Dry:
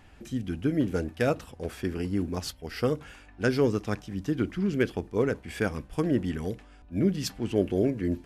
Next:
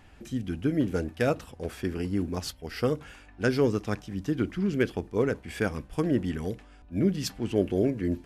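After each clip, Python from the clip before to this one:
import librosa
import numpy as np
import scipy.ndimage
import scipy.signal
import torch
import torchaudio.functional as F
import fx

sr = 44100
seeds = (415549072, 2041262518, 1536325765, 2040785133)

y = x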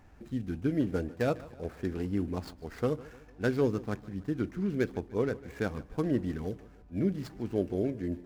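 y = scipy.signal.medfilt(x, 15)
y = fx.rider(y, sr, range_db=3, speed_s=2.0)
y = fx.echo_feedback(y, sr, ms=149, feedback_pct=49, wet_db=-19.5)
y = y * librosa.db_to_amplitude(-4.0)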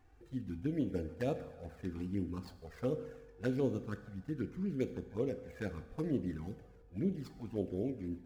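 y = fx.env_flanger(x, sr, rest_ms=2.8, full_db=-24.5)
y = fx.rev_fdn(y, sr, rt60_s=1.0, lf_ratio=0.9, hf_ratio=0.95, size_ms=12.0, drr_db=9.5)
y = y * librosa.db_to_amplitude(-5.5)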